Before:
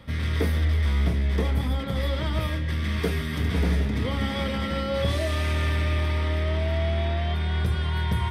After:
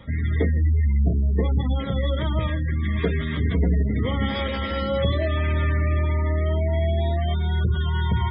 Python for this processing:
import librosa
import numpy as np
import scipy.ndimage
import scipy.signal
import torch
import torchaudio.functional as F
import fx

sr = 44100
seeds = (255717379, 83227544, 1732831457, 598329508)

y = fx.peak_eq(x, sr, hz=160.0, db=-12.0, octaves=0.77, at=(4.35, 4.82))
y = fx.spec_gate(y, sr, threshold_db=-25, keep='strong')
y = y * librosa.db_to_amplitude(3.0)